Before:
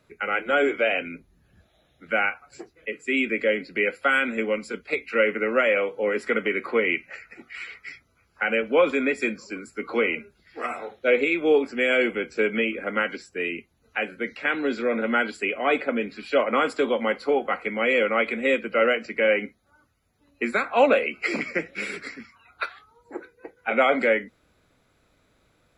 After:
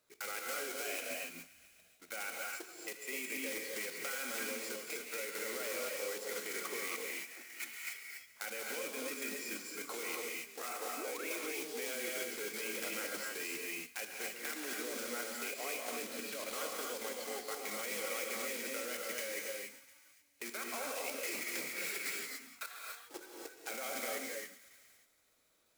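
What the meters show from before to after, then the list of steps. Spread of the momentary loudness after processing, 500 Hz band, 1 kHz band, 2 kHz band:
7 LU, -19.5 dB, -17.5 dB, -16.0 dB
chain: block-companded coder 3-bit; painted sound rise, 10.97–11.28 s, 250–2400 Hz -28 dBFS; compression 20:1, threshold -26 dBFS, peak gain reduction 15 dB; de-hum 45.66 Hz, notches 6; on a send: thinning echo 141 ms, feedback 71%, high-pass 820 Hz, level -17 dB; on the sum: level held to a coarse grid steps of 12 dB; tone controls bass -11 dB, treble +9 dB; gated-style reverb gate 310 ms rising, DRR -0.5 dB; trim -7 dB

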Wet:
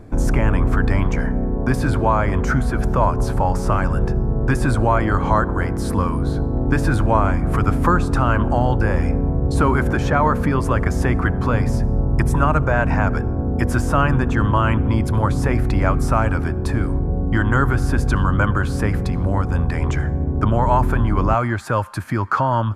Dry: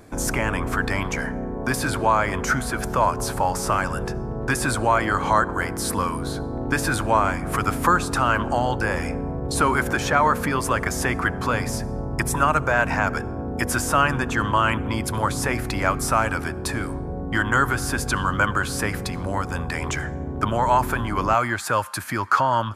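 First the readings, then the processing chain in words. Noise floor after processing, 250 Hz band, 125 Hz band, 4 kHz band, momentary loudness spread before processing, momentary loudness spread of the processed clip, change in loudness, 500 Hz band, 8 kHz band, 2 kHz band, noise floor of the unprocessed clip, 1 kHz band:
-23 dBFS, +6.0 dB, +9.5 dB, -6.0 dB, 8 LU, 4 LU, +3.5 dB, +3.0 dB, -9.0 dB, -2.0 dB, -30 dBFS, 0.0 dB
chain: tilt EQ -3 dB/octave

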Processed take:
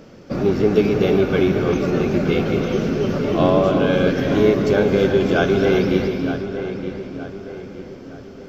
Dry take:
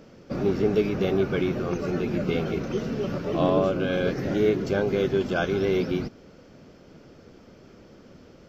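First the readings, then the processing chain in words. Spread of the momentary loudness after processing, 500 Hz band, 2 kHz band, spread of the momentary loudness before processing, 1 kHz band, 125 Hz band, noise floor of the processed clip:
16 LU, +7.5 dB, +7.5 dB, 6 LU, +7.5 dB, +7.5 dB, -39 dBFS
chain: on a send: filtered feedback delay 918 ms, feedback 44%, low-pass 3.2 kHz, level -10 dB; on the sum: gated-style reverb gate 390 ms rising, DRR 5 dB; trim +6 dB

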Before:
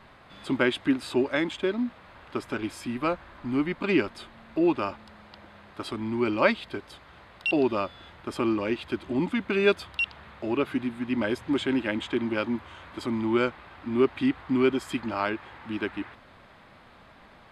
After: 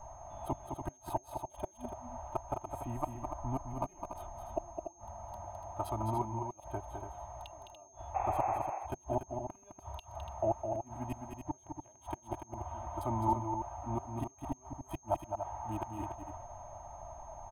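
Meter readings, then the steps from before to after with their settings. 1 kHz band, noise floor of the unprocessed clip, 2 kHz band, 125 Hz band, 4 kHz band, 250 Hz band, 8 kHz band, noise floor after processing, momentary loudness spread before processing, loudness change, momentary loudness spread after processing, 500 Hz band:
-1.0 dB, -53 dBFS, -26.5 dB, -2.0 dB, -24.5 dB, -16.5 dB, no reading, -61 dBFS, 13 LU, -12.0 dB, 14 LU, -12.0 dB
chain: local Wiener filter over 9 samples; inverted gate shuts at -19 dBFS, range -35 dB; treble shelf 9.2 kHz -11.5 dB; comb 3.2 ms, depth 71%; painted sound noise, 8.14–8.58 s, 310–2700 Hz -37 dBFS; FFT filter 140 Hz 0 dB, 240 Hz -21 dB, 500 Hz -15 dB, 750 Hz +9 dB, 1.6 kHz -24 dB, 6.4 kHz -16 dB, 11 kHz +10 dB; loudspeakers at several distances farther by 72 m -6 dB, 99 m -8 dB; whistle 6.4 kHz -66 dBFS; trim +5.5 dB

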